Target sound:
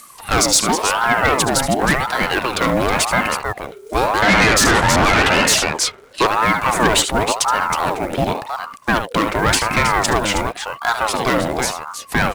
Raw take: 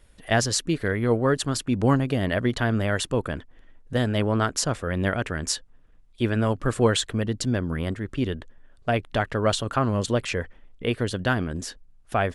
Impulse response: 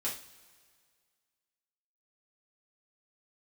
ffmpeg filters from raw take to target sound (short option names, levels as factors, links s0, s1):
-filter_complex "[0:a]acrossover=split=160|4100[s0][s1][s2];[s2]acompressor=mode=upward:threshold=0.00316:ratio=2.5[s3];[s0][s1][s3]amix=inputs=3:normalize=0,equalizer=f=940:t=o:w=0.34:g=14,asettb=1/sr,asplit=3[s4][s5][s6];[s4]atrim=end=1.854[s7];[s5]atrim=start=1.85:end=2.67,asetpts=PTS-STARTPTS,afade=t=in:d=0.004:c=qsin,afade=t=out:st=0.816:d=0.004:c=qsin,acrossover=split=450[s8][s9];[s8]acompressor=threshold=0.0251:ratio=6[s10];[s10][s9]amix=inputs=2:normalize=0[s11];[s6]atrim=start=2.666[s12];[s7][s11]acrossfade=d=0.004:c1=hsin:c2=qsin[s13];[s13][s12]acrossfade=d=0.004:c1=qsin:c2=hsin,aecho=1:1:73|318:0.251|0.355,asplit=2[s14][s15];[s15]acrusher=bits=3:mode=log:mix=0:aa=0.000001,volume=0.355[s16];[s14][s16]amix=inputs=2:normalize=0,asettb=1/sr,asplit=3[s17][s18][s19];[s17]atrim=end=4.224[s20];[s18]atrim=start=4.22:end=6.27,asetpts=PTS-STARTPTS,afade=t=in:d=0.004:c=qsin,afade=t=out:st=2.046:d=0.004:c=qsin,asplit=2[s21][s22];[s22]highpass=f=720:p=1,volume=17.8,asoftclip=type=tanh:threshold=0.668[s23];[s21][s23]amix=inputs=2:normalize=0,lowpass=f=1500:p=1,volume=0.501[s24];[s19]atrim=start=6.266[s25];[s20][s24]acrossfade=d=0.004:c1=hsin:c2=qsin[s26];[s26][s25]acrossfade=d=0.004:c1=qsin:c2=hsin,asoftclip=type=tanh:threshold=0.158,highshelf=f=5000:g=8,aeval=exprs='val(0)*sin(2*PI*790*n/s+790*0.5/0.92*sin(2*PI*0.92*n/s))':c=same,volume=2.66"